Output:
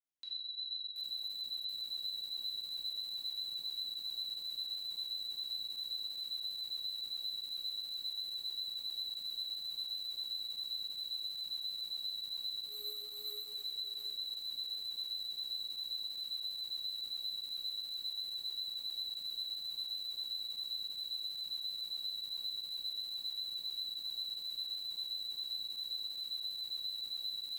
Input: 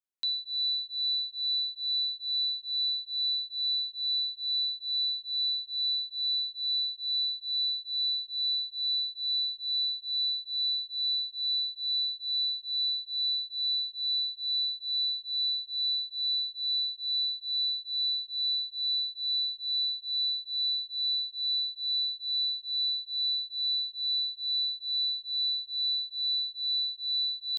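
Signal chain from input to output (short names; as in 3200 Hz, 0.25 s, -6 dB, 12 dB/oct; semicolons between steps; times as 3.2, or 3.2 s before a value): 12.66–13.49 median filter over 9 samples; limiter -32.5 dBFS, peak gain reduction 7.5 dB; rotary speaker horn 7.5 Hz; shoebox room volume 600 m³, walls mixed, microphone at 2.2 m; lo-fi delay 0.728 s, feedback 55%, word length 7-bit, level -6.5 dB; gain -7 dB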